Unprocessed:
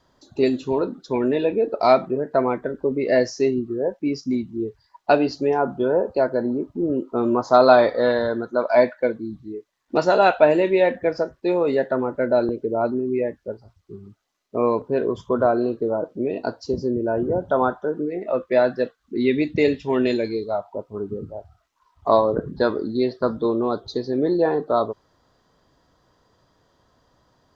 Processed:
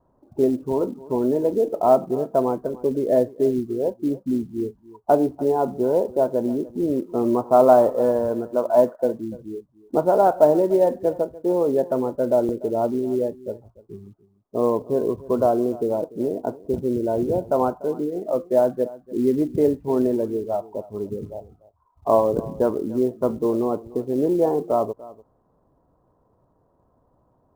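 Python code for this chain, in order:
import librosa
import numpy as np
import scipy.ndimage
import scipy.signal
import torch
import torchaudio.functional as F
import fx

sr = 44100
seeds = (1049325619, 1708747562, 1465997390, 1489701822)

p1 = scipy.signal.sosfilt(scipy.signal.butter(4, 1000.0, 'lowpass', fs=sr, output='sos'), x)
p2 = fx.quant_float(p1, sr, bits=4)
y = p2 + fx.echo_single(p2, sr, ms=293, db=-19.5, dry=0)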